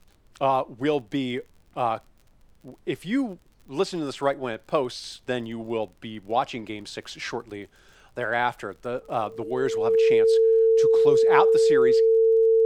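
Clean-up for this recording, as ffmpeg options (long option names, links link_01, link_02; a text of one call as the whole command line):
ffmpeg -i in.wav -af "adeclick=threshold=4,bandreject=frequency=450:width=30,agate=range=-21dB:threshold=-48dB" out.wav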